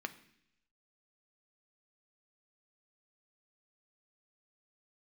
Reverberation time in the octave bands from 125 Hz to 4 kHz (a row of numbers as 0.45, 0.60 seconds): 0.90, 0.85, 0.75, 0.70, 0.90, 0.95 seconds